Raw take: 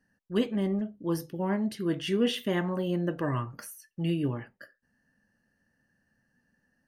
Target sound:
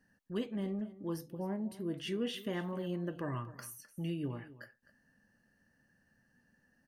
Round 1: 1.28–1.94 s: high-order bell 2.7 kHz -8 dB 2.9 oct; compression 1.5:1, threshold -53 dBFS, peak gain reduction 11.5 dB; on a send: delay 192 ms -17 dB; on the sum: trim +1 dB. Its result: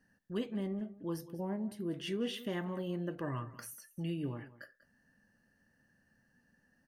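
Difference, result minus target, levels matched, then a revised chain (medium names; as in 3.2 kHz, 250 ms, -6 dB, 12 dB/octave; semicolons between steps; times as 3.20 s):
echo 66 ms early
1.28–1.94 s: high-order bell 2.7 kHz -8 dB 2.9 oct; compression 1.5:1, threshold -53 dBFS, peak gain reduction 11.5 dB; on a send: delay 258 ms -17 dB; on the sum: trim +1 dB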